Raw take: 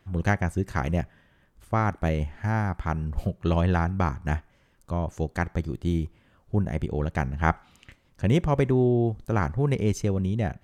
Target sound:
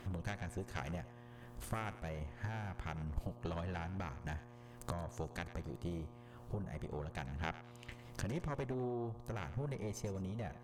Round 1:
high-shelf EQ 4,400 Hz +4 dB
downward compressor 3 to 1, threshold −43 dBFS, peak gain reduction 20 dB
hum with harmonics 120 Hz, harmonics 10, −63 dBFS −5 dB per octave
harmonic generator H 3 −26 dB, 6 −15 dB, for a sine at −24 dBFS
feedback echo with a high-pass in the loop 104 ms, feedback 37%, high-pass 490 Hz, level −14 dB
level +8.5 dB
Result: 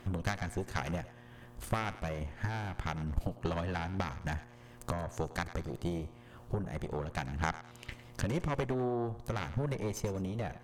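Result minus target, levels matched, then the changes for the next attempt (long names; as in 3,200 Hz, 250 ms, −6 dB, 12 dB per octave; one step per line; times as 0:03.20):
downward compressor: peak gain reduction −6 dB
change: downward compressor 3 to 1, threshold −52 dBFS, peak gain reduction 26 dB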